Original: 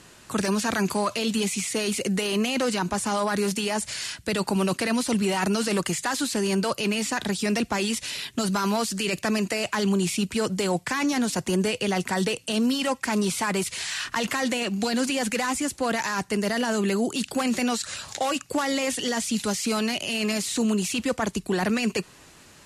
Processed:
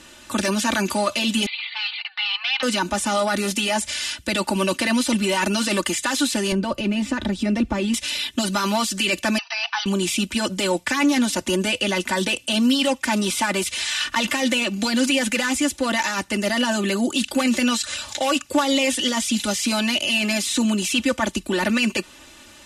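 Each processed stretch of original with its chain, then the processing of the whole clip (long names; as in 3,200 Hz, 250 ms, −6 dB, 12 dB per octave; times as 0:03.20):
0:01.46–0:02.63: linear-phase brick-wall band-pass 690–4,700 Hz + highs frequency-modulated by the lows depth 0.14 ms
0:06.52–0:07.94: spectral tilt −3.5 dB per octave + downward compressor 1.5 to 1, threshold −29 dBFS
0:09.38–0:09.86: linear-phase brick-wall band-pass 670–6,100 Hz + parametric band 2,100 Hz −4.5 dB 0.44 octaves
whole clip: parametric band 3,300 Hz +5.5 dB 0.98 octaves; notch filter 4,400 Hz, Q 18; comb filter 3.4 ms, depth 89%; level +1 dB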